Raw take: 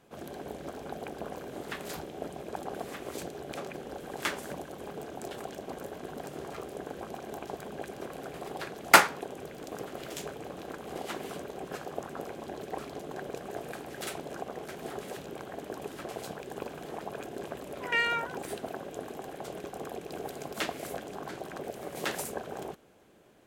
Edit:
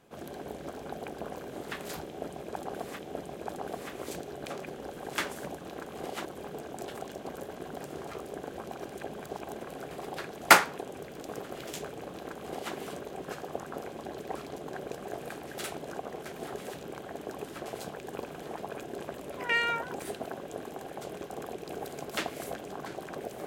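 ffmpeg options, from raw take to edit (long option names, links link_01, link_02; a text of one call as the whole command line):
ffmpeg -i in.wav -filter_complex "[0:a]asplit=6[link_01][link_02][link_03][link_04][link_05][link_06];[link_01]atrim=end=2.992[link_07];[link_02]atrim=start=2.058:end=4.682[link_08];[link_03]atrim=start=10.528:end=11.172[link_09];[link_04]atrim=start=4.678:end=7.252[link_10];[link_05]atrim=start=7.248:end=8.042,asetpts=PTS-STARTPTS,areverse[link_11];[link_06]atrim=start=8.038[link_12];[link_07][link_08]acrossfade=duration=0.004:curve1=hsin:curve2=hsin[link_13];[link_13][link_09]acrossfade=duration=0.004:curve1=hsin:curve2=hsin[link_14];[link_14][link_10]acrossfade=duration=0.004:curve1=hsin:curve2=hsin[link_15];[link_15][link_11]acrossfade=duration=0.004:curve1=hsin:curve2=hsin[link_16];[link_16][link_12]acrossfade=duration=0.004:curve1=hsin:curve2=hsin" out.wav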